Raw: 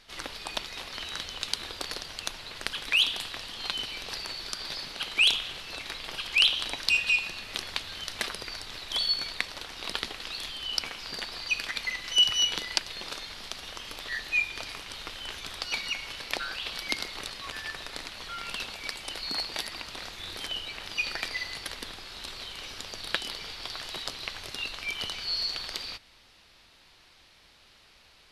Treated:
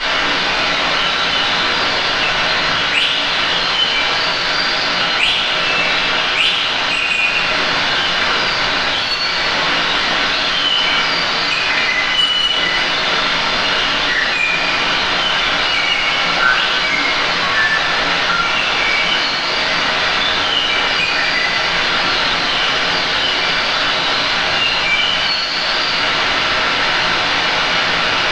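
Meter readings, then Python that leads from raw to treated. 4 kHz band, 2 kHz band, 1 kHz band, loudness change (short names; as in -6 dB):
+15.5 dB, +19.0 dB, +25.5 dB, +16.5 dB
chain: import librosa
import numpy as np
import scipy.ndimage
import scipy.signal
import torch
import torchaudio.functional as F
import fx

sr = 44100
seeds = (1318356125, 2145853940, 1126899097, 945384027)

p1 = fx.delta_mod(x, sr, bps=32000, step_db=-22.5)
p2 = scipy.signal.sosfilt(scipy.signal.butter(2, 130.0, 'highpass', fs=sr, output='sos'), p1)
p3 = fx.peak_eq(p2, sr, hz=1500.0, db=8.5, octaves=2.7)
p4 = fx.rider(p3, sr, range_db=10, speed_s=0.5)
p5 = p3 + (p4 * librosa.db_to_amplitude(-2.0))
p6 = 10.0 ** (-14.0 / 20.0) * np.tanh(p5 / 10.0 ** (-14.0 / 20.0))
p7 = fx.air_absorb(p6, sr, metres=120.0)
p8 = fx.echo_thinned(p7, sr, ms=128, feedback_pct=69, hz=420.0, wet_db=-11)
p9 = fx.room_shoebox(p8, sr, seeds[0], volume_m3=48.0, walls='mixed', distance_m=2.9)
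y = p9 * librosa.db_to_amplitude(-7.0)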